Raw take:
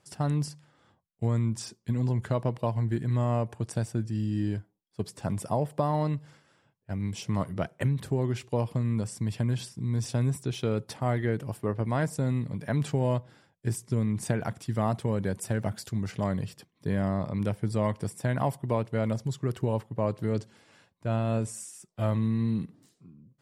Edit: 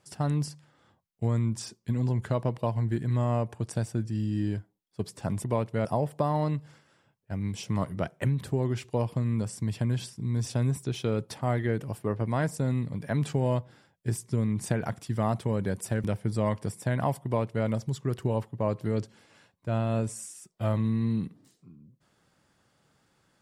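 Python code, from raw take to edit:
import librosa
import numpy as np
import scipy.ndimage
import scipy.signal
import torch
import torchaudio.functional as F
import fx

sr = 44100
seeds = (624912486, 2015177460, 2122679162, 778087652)

y = fx.edit(x, sr, fx.cut(start_s=15.63, length_s=1.79),
    fx.duplicate(start_s=18.63, length_s=0.41, to_s=5.44), tone=tone)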